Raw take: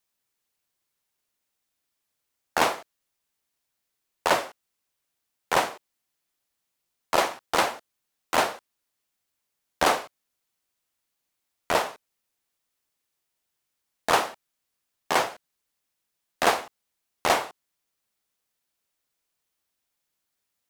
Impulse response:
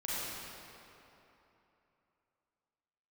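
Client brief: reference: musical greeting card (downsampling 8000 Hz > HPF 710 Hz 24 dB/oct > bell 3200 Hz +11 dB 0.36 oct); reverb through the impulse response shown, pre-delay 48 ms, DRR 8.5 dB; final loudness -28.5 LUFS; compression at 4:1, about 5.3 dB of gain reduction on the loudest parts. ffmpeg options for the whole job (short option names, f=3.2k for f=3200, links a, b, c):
-filter_complex "[0:a]acompressor=threshold=-22dB:ratio=4,asplit=2[a][b];[1:a]atrim=start_sample=2205,adelay=48[c];[b][c]afir=irnorm=-1:irlink=0,volume=-13.5dB[d];[a][d]amix=inputs=2:normalize=0,aresample=8000,aresample=44100,highpass=f=710:w=0.5412,highpass=f=710:w=1.3066,equalizer=f=3.2k:t=o:w=0.36:g=11,volume=2.5dB"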